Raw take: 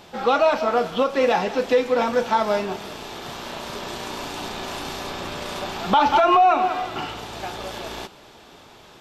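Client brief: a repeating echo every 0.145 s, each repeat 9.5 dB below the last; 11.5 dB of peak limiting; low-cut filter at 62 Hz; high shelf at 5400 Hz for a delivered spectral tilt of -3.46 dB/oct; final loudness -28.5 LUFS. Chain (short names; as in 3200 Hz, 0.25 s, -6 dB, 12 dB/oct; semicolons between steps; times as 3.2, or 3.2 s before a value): HPF 62 Hz; high shelf 5400 Hz +4 dB; limiter -18 dBFS; feedback echo 0.145 s, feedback 33%, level -9.5 dB; gain -1 dB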